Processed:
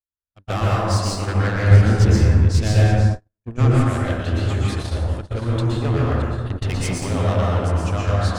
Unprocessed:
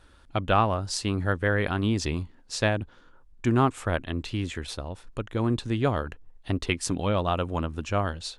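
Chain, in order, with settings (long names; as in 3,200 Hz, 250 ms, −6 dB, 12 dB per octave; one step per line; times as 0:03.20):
delay that plays each chunk backwards 454 ms, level −11.5 dB
parametric band 77 Hz +6.5 dB 1.4 octaves
soft clipping −24 dBFS, distortion −8 dB
dense smooth reverb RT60 1.8 s, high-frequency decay 0.4×, pre-delay 105 ms, DRR −5.5 dB
noise gate −25 dBFS, range −55 dB
0:01.71–0:03.84: low-shelf EQ 200 Hz +8.5 dB
level +1.5 dB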